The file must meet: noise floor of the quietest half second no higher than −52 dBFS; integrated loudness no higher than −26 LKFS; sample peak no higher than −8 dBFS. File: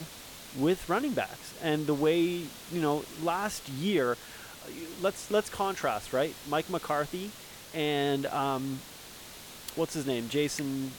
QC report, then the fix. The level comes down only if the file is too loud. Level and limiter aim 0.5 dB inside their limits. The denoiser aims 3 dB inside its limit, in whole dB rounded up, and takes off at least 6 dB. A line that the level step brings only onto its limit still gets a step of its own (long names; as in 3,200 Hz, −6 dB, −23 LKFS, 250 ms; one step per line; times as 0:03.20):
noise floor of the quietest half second −47 dBFS: out of spec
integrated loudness −31.0 LKFS: in spec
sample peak −16.0 dBFS: in spec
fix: broadband denoise 8 dB, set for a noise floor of −47 dBFS